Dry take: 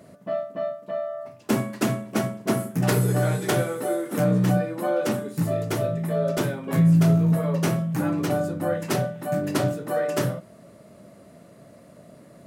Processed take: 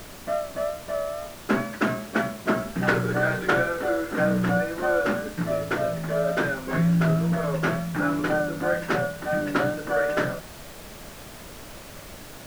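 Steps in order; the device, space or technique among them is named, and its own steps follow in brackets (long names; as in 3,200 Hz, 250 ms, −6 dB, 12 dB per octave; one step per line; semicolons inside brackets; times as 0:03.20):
horn gramophone (band-pass filter 190–3,400 Hz; parametric band 1,500 Hz +11.5 dB 0.44 octaves; tape wow and flutter; pink noise bed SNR 16 dB)
0:01.63–0:02.59: high-pass filter 67 Hz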